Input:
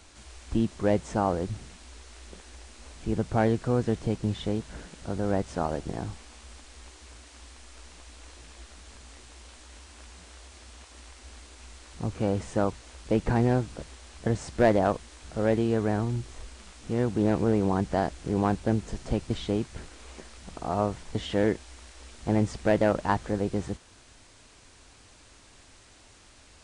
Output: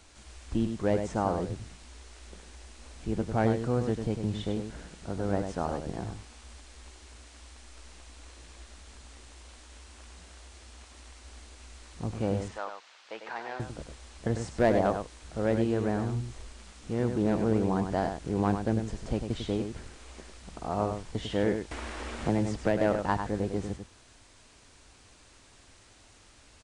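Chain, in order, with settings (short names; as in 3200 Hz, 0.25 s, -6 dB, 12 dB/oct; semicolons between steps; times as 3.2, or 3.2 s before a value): 12.48–13.6 Butterworth band-pass 2100 Hz, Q 0.51; outdoor echo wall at 17 m, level -7 dB; 21.71–22.8 three-band squash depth 70%; gain -3 dB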